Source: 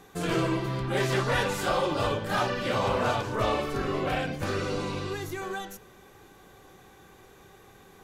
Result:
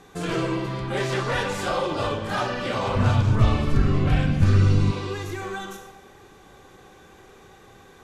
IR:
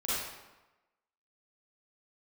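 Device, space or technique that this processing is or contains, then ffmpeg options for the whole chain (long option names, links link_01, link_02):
ducked reverb: -filter_complex "[0:a]asplit=3[link_01][link_02][link_03];[1:a]atrim=start_sample=2205[link_04];[link_02][link_04]afir=irnorm=-1:irlink=0[link_05];[link_03]apad=whole_len=354426[link_06];[link_05][link_06]sidechaincompress=threshold=-32dB:ratio=8:attack=16:release=265,volume=-7.5dB[link_07];[link_01][link_07]amix=inputs=2:normalize=0,asplit=3[link_08][link_09][link_10];[link_08]afade=type=out:start_time=2.95:duration=0.02[link_11];[link_09]asubboost=boost=10:cutoff=170,afade=type=in:start_time=2.95:duration=0.02,afade=type=out:start_time=4.9:duration=0.02[link_12];[link_10]afade=type=in:start_time=4.9:duration=0.02[link_13];[link_11][link_12][link_13]amix=inputs=3:normalize=0,lowpass=9600"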